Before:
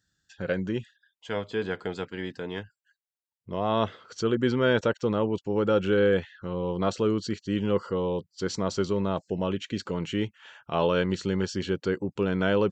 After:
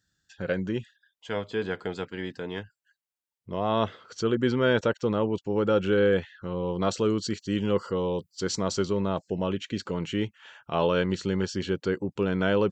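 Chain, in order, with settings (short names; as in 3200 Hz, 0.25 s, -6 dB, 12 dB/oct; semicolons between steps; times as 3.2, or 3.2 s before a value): 6.81–8.83 high shelf 5900 Hz +10 dB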